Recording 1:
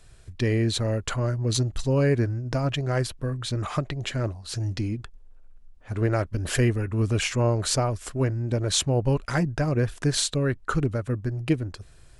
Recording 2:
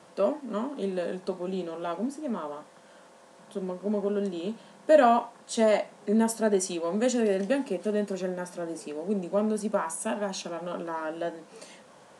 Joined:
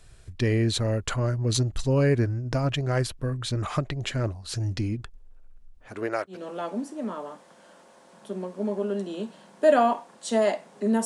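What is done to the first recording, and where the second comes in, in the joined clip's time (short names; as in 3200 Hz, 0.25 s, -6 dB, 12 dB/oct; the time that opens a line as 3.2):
recording 1
5.87–6.45 HPF 260 Hz -> 870 Hz
6.36 switch to recording 2 from 1.62 s, crossfade 0.18 s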